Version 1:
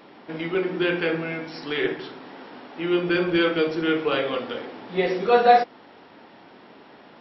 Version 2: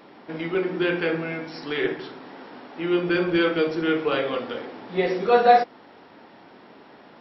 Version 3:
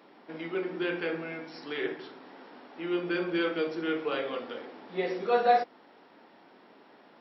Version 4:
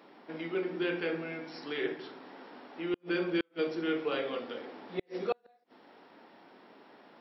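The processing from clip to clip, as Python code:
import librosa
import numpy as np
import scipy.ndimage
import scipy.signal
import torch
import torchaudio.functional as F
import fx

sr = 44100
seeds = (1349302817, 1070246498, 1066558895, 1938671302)

y1 = fx.peak_eq(x, sr, hz=3000.0, db=-2.5, octaves=0.77)
y2 = scipy.signal.sosfilt(scipy.signal.butter(2, 190.0, 'highpass', fs=sr, output='sos'), y1)
y2 = y2 * librosa.db_to_amplitude(-7.5)
y3 = fx.dynamic_eq(y2, sr, hz=1100.0, q=0.71, threshold_db=-43.0, ratio=4.0, max_db=-3)
y3 = fx.gate_flip(y3, sr, shuts_db=-20.0, range_db=-42)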